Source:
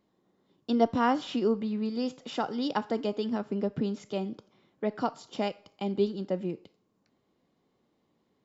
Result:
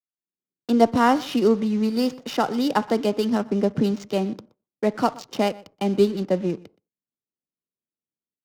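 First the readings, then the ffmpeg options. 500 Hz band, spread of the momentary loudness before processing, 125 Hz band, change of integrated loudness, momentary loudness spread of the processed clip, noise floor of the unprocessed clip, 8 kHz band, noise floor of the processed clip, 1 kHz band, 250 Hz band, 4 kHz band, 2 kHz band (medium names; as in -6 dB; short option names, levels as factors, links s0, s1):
+8.0 dB, 8 LU, +8.5 dB, +8.0 dB, 7 LU, -74 dBFS, no reading, under -85 dBFS, +8.0 dB, +8.0 dB, +7.5 dB, +8.5 dB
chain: -filter_complex "[0:a]agate=range=0.02:threshold=0.00141:ratio=16:detection=peak,bandreject=f=3400:w=13,acrossover=split=150|2700[s0][s1][s2];[s2]alimiter=level_in=5.96:limit=0.0631:level=0:latency=1:release=86,volume=0.168[s3];[s0][s1][s3]amix=inputs=3:normalize=0,dynaudnorm=f=220:g=3:m=3.16,asplit=2[s4][s5];[s5]acrusher=bits=5:mix=0:aa=0.000001,volume=0.282[s6];[s4][s6]amix=inputs=2:normalize=0,lowpass=f=6200:t=q:w=3.4,adynamicsmooth=sensitivity=6.5:basefreq=770,asplit=2[s7][s8];[s8]adelay=122.4,volume=0.0794,highshelf=f=4000:g=-2.76[s9];[s7][s9]amix=inputs=2:normalize=0,volume=0.668"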